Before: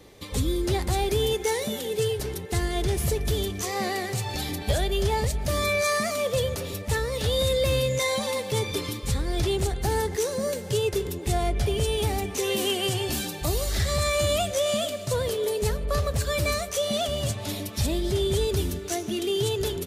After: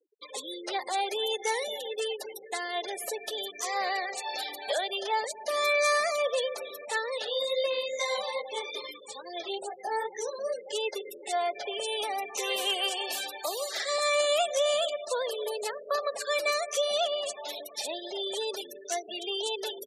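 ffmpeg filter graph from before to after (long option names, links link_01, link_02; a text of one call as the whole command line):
ffmpeg -i in.wav -filter_complex "[0:a]asettb=1/sr,asplit=3[link_01][link_02][link_03];[link_01]atrim=end=7.244[link_04];[link_02]atrim=start=7.24:end=10.66,asetpts=PTS-STARTPTS,afade=type=in:duration=0.004:curve=qsin,afade=type=out:start_time=3.416:duration=0.004:curve=qsin,lowshelf=frequency=160:gain=8,flanger=delay=16.5:depth=3.9:speed=2.4[link_05];[link_03]atrim=start=10.656[link_06];[link_04][link_05]acrossfade=duration=0.004:curve1=hsin:curve2=qsin[link_07];[link_07][link_06]acrossfade=duration=0.004:curve1=qsin:curve2=hsin,afftfilt=real='re*gte(hypot(re,im),0.0224)':imag='im*gte(hypot(re,im),0.0224)':win_size=1024:overlap=0.75,highpass=frequency=540:width=0.5412,highpass=frequency=540:width=1.3066,highshelf=frequency=7200:gain=-5.5,volume=1dB" out.wav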